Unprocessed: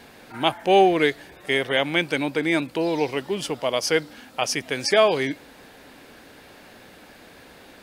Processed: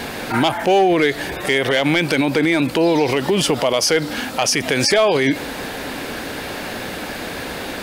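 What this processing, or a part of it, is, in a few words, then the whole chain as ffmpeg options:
loud club master: -af "acompressor=threshold=-25dB:ratio=2,asoftclip=type=hard:threshold=-17dB,alimiter=level_in=26.5dB:limit=-1dB:release=50:level=0:latency=1,volume=-7dB"

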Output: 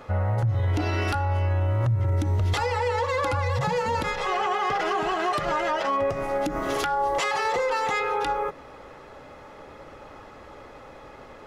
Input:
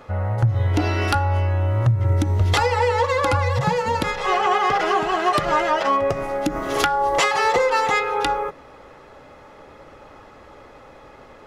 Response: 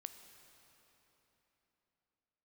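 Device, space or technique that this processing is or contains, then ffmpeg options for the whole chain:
stacked limiters: -af "alimiter=limit=-12.5dB:level=0:latency=1:release=346,alimiter=limit=-17.5dB:level=0:latency=1:release=30"

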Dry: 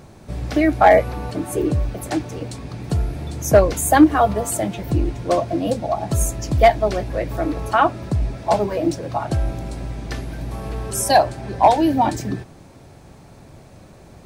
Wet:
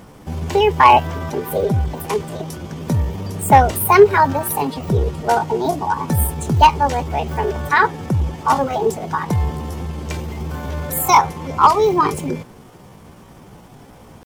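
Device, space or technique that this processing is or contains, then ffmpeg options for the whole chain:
chipmunk voice: -af "asetrate=58866,aresample=44100,atempo=0.749154,volume=2dB"

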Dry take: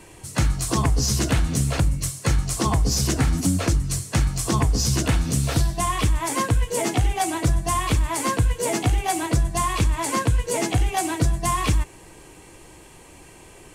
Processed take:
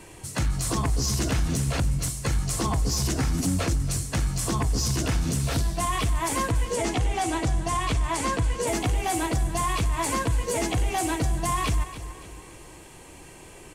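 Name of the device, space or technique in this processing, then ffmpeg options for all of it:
soft clipper into limiter: -filter_complex "[0:a]asoftclip=type=tanh:threshold=-11.5dB,alimiter=limit=-18dB:level=0:latency=1:release=45,asettb=1/sr,asplit=3[a][b][c];[a]atrim=end=6.514[d];[b]atrim=start=6.51:end=8.67,asetpts=PTS-STARTPTS,afade=t=in:d=0.004:c=qsin,afade=t=out:st=2.156:d=0.004:c=qsin,lowpass=8.8k[e];[c]atrim=start=8.666[f];[d][e]acrossfade=d=0.004:c1=hsin:c2=qsin[g];[g][f]acrossfade=d=0.004:c1=qsin:c2=hsin,aecho=1:1:284|568|852|1136:0.211|0.0888|0.0373|0.0157"

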